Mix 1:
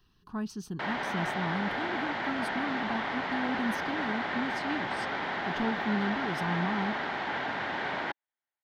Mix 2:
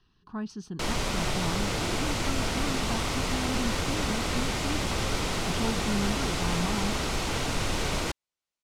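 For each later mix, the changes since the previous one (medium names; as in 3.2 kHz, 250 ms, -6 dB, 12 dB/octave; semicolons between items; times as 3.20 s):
background: remove cabinet simulation 300–3000 Hz, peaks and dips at 330 Hz -4 dB, 480 Hz -8 dB, 820 Hz +5 dB, 1.2 kHz -4 dB, 1.7 kHz +9 dB, 2.6 kHz -8 dB; master: add low-pass 7.2 kHz 12 dB/octave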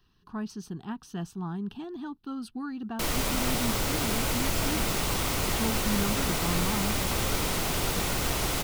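background: entry +2.20 s; master: remove low-pass 7.2 kHz 12 dB/octave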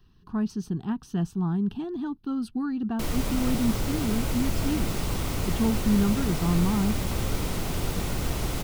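background -6.0 dB; master: add bass shelf 410 Hz +10 dB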